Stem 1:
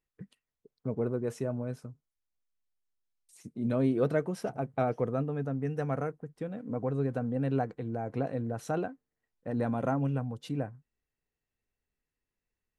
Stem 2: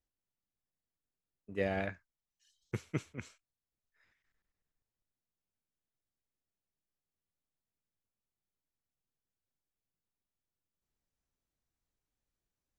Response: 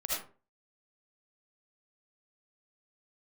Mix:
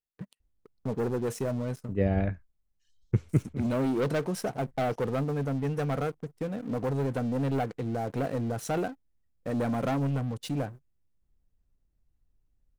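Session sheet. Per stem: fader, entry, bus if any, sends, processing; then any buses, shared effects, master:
−6.5 dB, 0.00 s, no send, leveller curve on the samples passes 3
+0.5 dB, 0.40 s, no send, spectral tilt −4.5 dB per octave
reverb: not used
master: high-shelf EQ 4,700 Hz +7 dB

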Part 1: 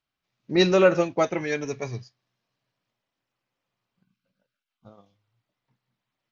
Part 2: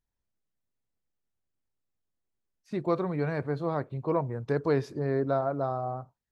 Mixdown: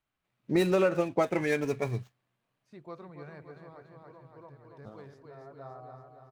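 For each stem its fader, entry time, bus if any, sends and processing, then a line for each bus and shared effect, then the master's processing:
+1.0 dB, 0.00 s, no send, no echo send, running median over 9 samples
−13.5 dB, 0.00 s, no send, echo send −7.5 dB, parametric band 280 Hz −5 dB 2.3 octaves; automatic ducking −19 dB, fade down 1.55 s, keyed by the first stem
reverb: not used
echo: repeating echo 284 ms, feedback 58%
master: downward compressor 5 to 1, threshold −22 dBFS, peak gain reduction 10.5 dB

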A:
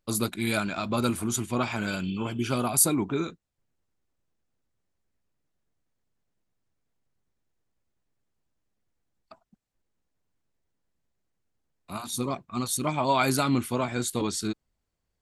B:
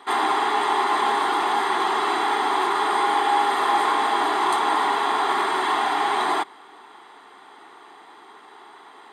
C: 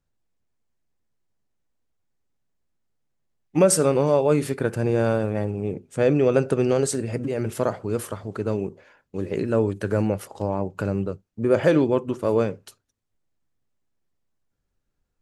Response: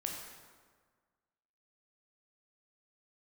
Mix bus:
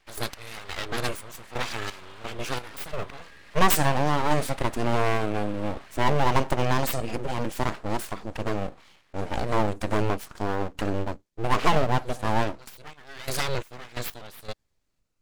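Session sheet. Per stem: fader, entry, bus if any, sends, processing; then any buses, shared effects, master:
+1.0 dB, 0.00 s, no send, gate pattern ".x..xxx..xx..xx." 87 BPM −12 dB; automatic ducking −17 dB, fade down 0.35 s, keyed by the third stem
−17.0 dB, 0.00 s, no send, downward compressor 10 to 1, threshold −27 dBFS, peak gain reduction 11.5 dB
+3.0 dB, 0.00 s, no send, phaser whose notches keep moving one way rising 0.6 Hz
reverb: not used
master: high-shelf EQ 10,000 Hz −7.5 dB; full-wave rectification; tilt shelving filter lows −3 dB, about 1,100 Hz

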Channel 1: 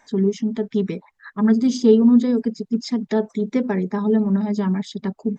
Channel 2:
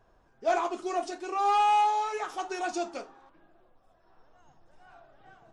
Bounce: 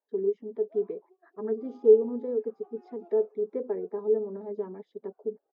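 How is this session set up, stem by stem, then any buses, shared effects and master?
−0.5 dB, 0.00 s, no send, no echo send, no processing
0:02.11 −13.5 dB → 0:02.85 −4.5 dB, 0.25 s, no send, echo send −15 dB, automatic ducking −7 dB, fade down 1.00 s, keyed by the first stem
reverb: not used
echo: single-tap delay 922 ms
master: noise gate −46 dBFS, range −20 dB; four-pole ladder band-pass 480 Hz, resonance 65%

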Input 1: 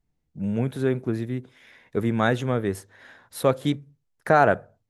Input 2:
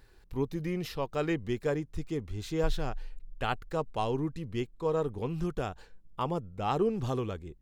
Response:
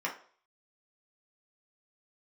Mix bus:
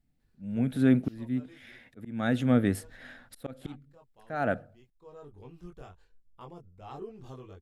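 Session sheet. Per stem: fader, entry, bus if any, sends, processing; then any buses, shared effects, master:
+1.0 dB, 0.00 s, no send, de-essing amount 65%; thirty-one-band graphic EQ 250 Hz +9 dB, 400 Hz −9 dB, 1,000 Hz −12 dB, 6,300 Hz −6 dB; volume swells 579 ms
−12.0 dB, 0.20 s, muted 0:01.85–0:02.81, no send, multi-voice chorus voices 6, 0.59 Hz, delay 22 ms, depth 1.7 ms; automatic ducking −12 dB, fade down 1.65 s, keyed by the first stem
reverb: not used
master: no processing

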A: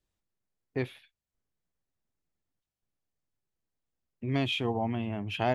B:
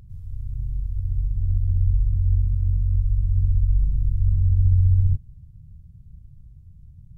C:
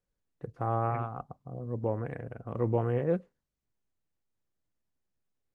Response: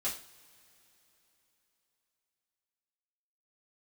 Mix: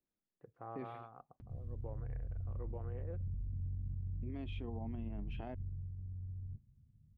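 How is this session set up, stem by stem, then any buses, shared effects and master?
−11.5 dB, 0.00 s, bus A, no send, no processing
0:05.25 −5.5 dB → 0:05.93 −18.5 dB, 1.40 s, bus A, no send, notch comb filter 170 Hz; brickwall limiter −19 dBFS, peak gain reduction 9.5 dB
−15.0 dB, 0.00 s, no bus, no send, no processing
bus A: 0.0 dB, parametric band 220 Hz +14 dB 1.9 octaves; downward compressor 3 to 1, threshold −29 dBFS, peak gain reduction 6.5 dB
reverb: not used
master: bass and treble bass −7 dB, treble −14 dB; brickwall limiter −34.5 dBFS, peak gain reduction 10 dB

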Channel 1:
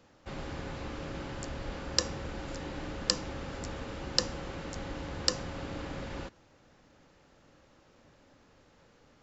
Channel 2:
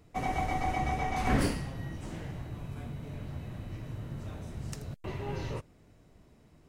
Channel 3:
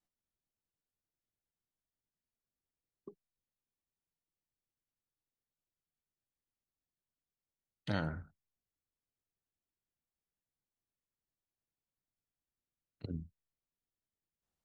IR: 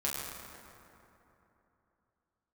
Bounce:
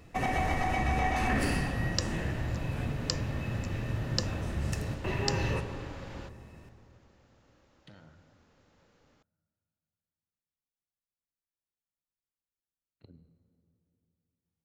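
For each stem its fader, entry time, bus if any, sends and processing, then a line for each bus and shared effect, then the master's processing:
−4.5 dB, 0.00 s, no send, no processing
+2.5 dB, 0.00 s, send −9.5 dB, brickwall limiter −26 dBFS, peak gain reduction 10.5 dB; hollow resonant body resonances 1,800/2,600 Hz, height 13 dB, ringing for 30 ms
−9.5 dB, 0.00 s, send −12 dB, downward compressor, threshold −44 dBFS, peak gain reduction 14 dB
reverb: on, RT60 3.1 s, pre-delay 7 ms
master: no processing

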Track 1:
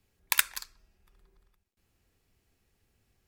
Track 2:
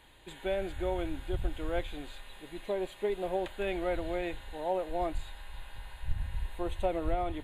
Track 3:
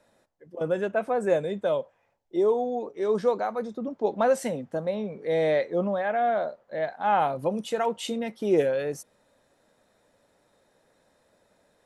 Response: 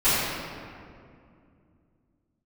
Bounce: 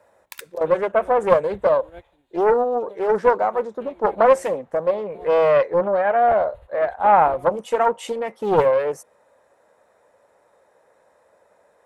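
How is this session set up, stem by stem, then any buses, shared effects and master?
−1.5 dB, 0.00 s, no send, automatic ducking −23 dB, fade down 0.75 s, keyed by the third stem
−1.5 dB, 0.20 s, no send, expander for the loud parts 2.5 to 1, over −40 dBFS
−1.0 dB, 0.00 s, no send, octave-band graphic EQ 125/250/500/1,000/2,000/4,000/8,000 Hz −6/−7/+8/+9/+5/−6/+3 dB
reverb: not used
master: high-pass filter 68 Hz; low-shelf EQ 340 Hz +4.5 dB; highs frequency-modulated by the lows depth 0.51 ms

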